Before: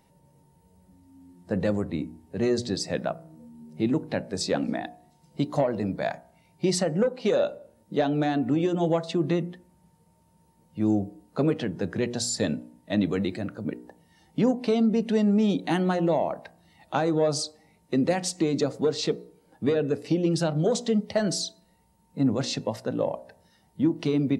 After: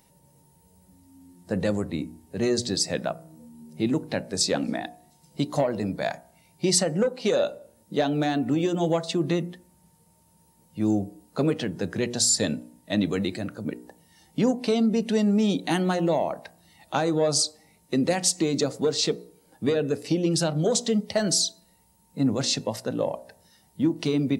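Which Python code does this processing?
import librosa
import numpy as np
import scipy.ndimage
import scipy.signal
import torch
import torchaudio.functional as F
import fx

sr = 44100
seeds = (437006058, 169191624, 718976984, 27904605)

y = fx.high_shelf(x, sr, hz=4300.0, db=11.5)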